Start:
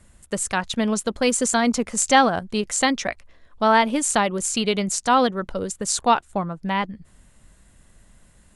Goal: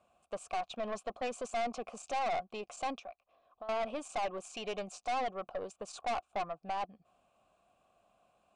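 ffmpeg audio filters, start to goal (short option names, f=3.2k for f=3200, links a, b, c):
-filter_complex "[0:a]equalizer=f=1.9k:w=1.7:g=-5,alimiter=limit=-14.5dB:level=0:latency=1:release=24,asettb=1/sr,asplit=3[a][b][c];[a]atrim=end=2.994[d];[b]atrim=start=2.99:end=3.69,asetpts=PTS-STARTPTS,afade=t=in:d=0.004:c=qsin,afade=t=out:st=0.696:d=0.004:c=qsin,acompressor=threshold=-39dB:ratio=10[e];[c]atrim=start=3.686[f];[d][e]acrossfade=d=0.004:c1=hsin:c2=qsin[g];[g][f]acrossfade=d=0.004:c1=qsin:c2=hsin,asplit=3[h][i][j];[h]bandpass=f=730:t=q:w=8,volume=0dB[k];[i]bandpass=f=1.09k:t=q:w=8,volume=-6dB[l];[j]bandpass=f=2.44k:t=q:w=8,volume=-9dB[m];[k][l][m]amix=inputs=3:normalize=0,aeval=exprs='(tanh(63.1*val(0)+0.3)-tanh(0.3))/63.1':c=same,aresample=22050,aresample=44100,volume=5dB"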